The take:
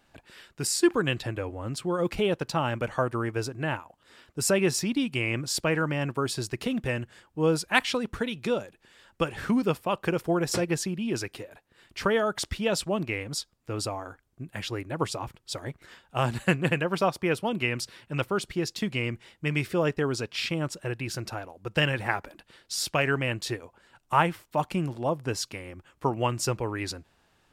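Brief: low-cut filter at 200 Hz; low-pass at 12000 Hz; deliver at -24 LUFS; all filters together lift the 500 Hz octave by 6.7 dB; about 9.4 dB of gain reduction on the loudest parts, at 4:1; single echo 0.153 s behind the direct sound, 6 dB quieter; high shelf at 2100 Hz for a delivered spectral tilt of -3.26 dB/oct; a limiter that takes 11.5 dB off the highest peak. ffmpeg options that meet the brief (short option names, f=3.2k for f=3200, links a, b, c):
-af "highpass=200,lowpass=12k,equalizer=f=500:t=o:g=8,highshelf=f=2.1k:g=4,acompressor=threshold=-25dB:ratio=4,alimiter=limit=-21dB:level=0:latency=1,aecho=1:1:153:0.501,volume=8dB"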